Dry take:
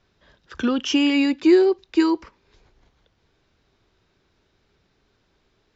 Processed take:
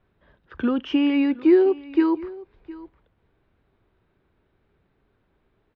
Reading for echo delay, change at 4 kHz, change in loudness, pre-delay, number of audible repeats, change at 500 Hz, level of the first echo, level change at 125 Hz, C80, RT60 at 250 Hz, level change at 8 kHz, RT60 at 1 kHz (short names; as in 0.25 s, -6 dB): 0.712 s, -9.5 dB, -1.0 dB, none, 1, -1.0 dB, -19.5 dB, n/a, none, none, n/a, none